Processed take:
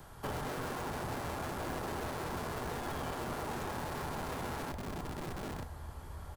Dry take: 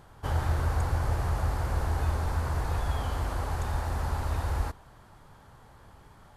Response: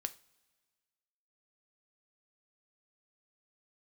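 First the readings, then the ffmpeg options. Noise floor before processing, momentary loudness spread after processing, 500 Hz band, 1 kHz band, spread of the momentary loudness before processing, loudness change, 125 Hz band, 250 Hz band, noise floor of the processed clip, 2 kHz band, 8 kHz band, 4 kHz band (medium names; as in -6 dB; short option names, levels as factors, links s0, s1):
-55 dBFS, 4 LU, -1.0 dB, -3.5 dB, 4 LU, -9.0 dB, -13.5 dB, +0.5 dB, -49 dBFS, -2.5 dB, -1.5 dB, -1.0 dB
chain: -filter_complex "[0:a]highshelf=f=8000:g=10,asplit=2[s0][s1];[s1]adelay=918,lowpass=f=1300:p=1,volume=0.299,asplit=2[s2][s3];[s3]adelay=918,lowpass=f=1300:p=1,volume=0.36,asplit=2[s4][s5];[s5]adelay=918,lowpass=f=1300:p=1,volume=0.36,asplit=2[s6][s7];[s7]adelay=918,lowpass=f=1300:p=1,volume=0.36[s8];[s0][s2][s4][s6][s8]amix=inputs=5:normalize=0,acrossover=split=720|2800[s9][s10][s11];[s9]acompressor=threshold=0.0251:ratio=4[s12];[s10]acompressor=threshold=0.00562:ratio=4[s13];[s11]acompressor=threshold=0.00112:ratio=4[s14];[s12][s13][s14]amix=inputs=3:normalize=0,acrossover=split=120|650|2900[s15][s16][s17][s18];[s15]aeval=exprs='(mod(84.1*val(0)+1,2)-1)/84.1':c=same[s19];[s19][s16][s17][s18]amix=inputs=4:normalize=0[s20];[1:a]atrim=start_sample=2205[s21];[s20][s21]afir=irnorm=-1:irlink=0,volume=1.33"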